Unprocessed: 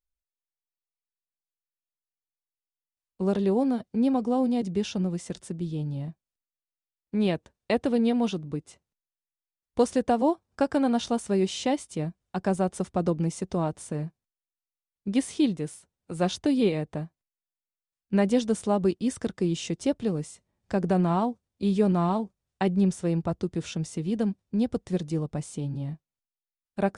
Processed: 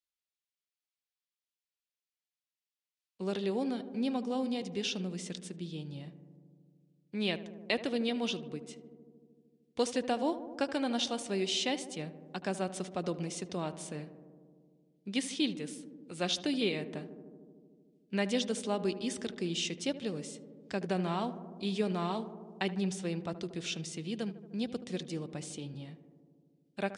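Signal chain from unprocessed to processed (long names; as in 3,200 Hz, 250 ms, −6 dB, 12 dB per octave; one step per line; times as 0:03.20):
meter weighting curve D
on a send: feedback echo with a low-pass in the loop 76 ms, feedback 84%, low-pass 1,500 Hz, level −13.5 dB
on the sum: level −8 dB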